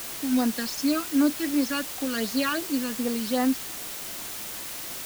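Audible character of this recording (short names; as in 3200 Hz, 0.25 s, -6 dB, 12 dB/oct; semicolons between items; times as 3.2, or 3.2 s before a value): phasing stages 12, 2.7 Hz, lowest notch 620–3800 Hz; a quantiser's noise floor 6-bit, dither triangular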